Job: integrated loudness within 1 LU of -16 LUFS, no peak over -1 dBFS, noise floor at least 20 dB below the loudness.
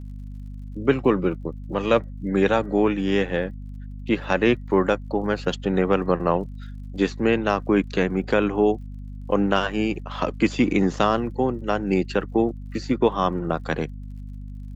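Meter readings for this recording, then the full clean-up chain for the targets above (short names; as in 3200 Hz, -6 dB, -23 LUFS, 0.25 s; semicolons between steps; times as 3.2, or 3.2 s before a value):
ticks 45/s; hum 50 Hz; harmonics up to 250 Hz; hum level -33 dBFS; loudness -23.0 LUFS; peak -4.5 dBFS; loudness target -16.0 LUFS
-> de-click; de-hum 50 Hz, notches 5; gain +7 dB; limiter -1 dBFS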